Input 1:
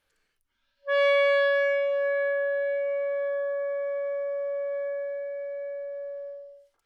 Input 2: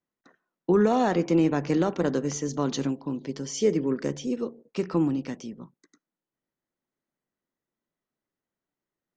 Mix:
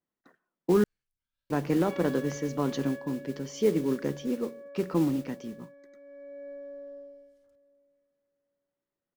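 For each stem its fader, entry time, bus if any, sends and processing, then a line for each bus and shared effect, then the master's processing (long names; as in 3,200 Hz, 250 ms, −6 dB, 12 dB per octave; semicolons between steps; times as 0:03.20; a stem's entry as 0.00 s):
−8.0 dB, 0.70 s, no send, echo send −22.5 dB, sub-octave generator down 1 octave, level −3 dB; bass and treble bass +9 dB, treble +10 dB; level that may rise only so fast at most 110 dB per second; automatic ducking −11 dB, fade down 1.15 s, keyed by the second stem
−1.5 dB, 0.00 s, muted 0:00.84–0:01.50, no send, no echo send, high-shelf EQ 6,200 Hz −8 dB; noise that follows the level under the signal 19 dB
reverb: not used
echo: repeating echo 775 ms, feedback 16%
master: high-shelf EQ 5,200 Hz −7.5 dB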